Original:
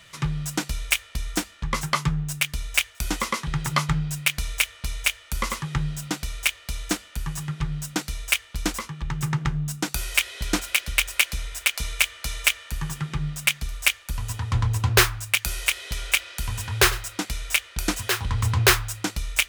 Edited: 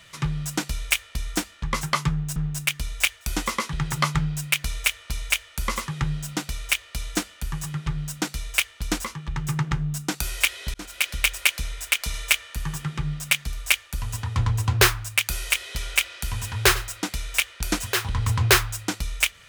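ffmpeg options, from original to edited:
ffmpeg -i in.wav -filter_complex "[0:a]asplit=4[link_01][link_02][link_03][link_04];[link_01]atrim=end=2.362[link_05];[link_02]atrim=start=2.098:end=10.48,asetpts=PTS-STARTPTS,afade=type=out:start_time=8.378:duration=0.004:curve=hsin[link_06];[link_03]atrim=start=10.48:end=11.882,asetpts=PTS-STARTPTS,afade=type=in:duration=0.34[link_07];[link_04]atrim=start=12.298[link_08];[link_06][link_07]concat=n=2:v=0:a=1[link_09];[link_05][link_09]acrossfade=duration=0.004:curve1=hsin:curve2=hsin[link_10];[link_10][link_08]acrossfade=duration=0.004:curve1=hsin:curve2=hsin" out.wav

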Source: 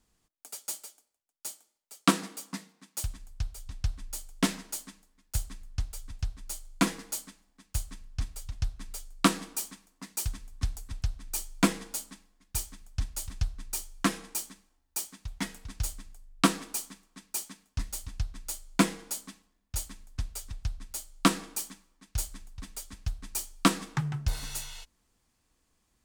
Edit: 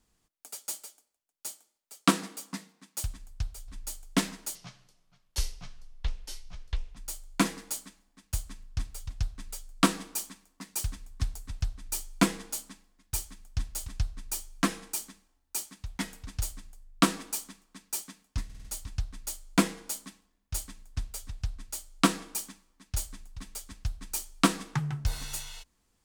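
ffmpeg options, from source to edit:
ffmpeg -i in.wav -filter_complex "[0:a]asplit=8[link_01][link_02][link_03][link_04][link_05][link_06][link_07][link_08];[link_01]atrim=end=3.682[link_09];[link_02]atrim=start=3.938:end=4.814[link_10];[link_03]atrim=start=4.81:end=6.38,asetpts=PTS-STARTPTS,asetrate=28665,aresample=44100,atrim=end_sample=106518,asetpts=PTS-STARTPTS[link_11];[link_04]atrim=start=6.376:end=17.912[link_12];[link_05]atrim=start=17.858:end=17.912[link_13];[link_06]atrim=start=17.858:end=17.912[link_14];[link_07]atrim=start=17.858:end=17.912[link_15];[link_08]atrim=start=17.858[link_16];[link_09][link_10]acrossfade=duration=0.004:curve1=hsin:curve2=hsin[link_17];[link_17][link_11]acrossfade=duration=0.004:curve1=hsin:curve2=hsin[link_18];[link_18][link_12]acrossfade=duration=0.004:curve1=hsin:curve2=hsin[link_19];[link_19][link_13]acrossfade=duration=0.004:curve1=hsin:curve2=hsin[link_20];[link_20][link_14]acrossfade=duration=0.004:curve1=hsin:curve2=hsin[link_21];[link_21][link_15]acrossfade=duration=0.004:curve1=hsin:curve2=hsin[link_22];[link_22][link_16]acrossfade=duration=0.004:curve1=hsin:curve2=hsin" out.wav

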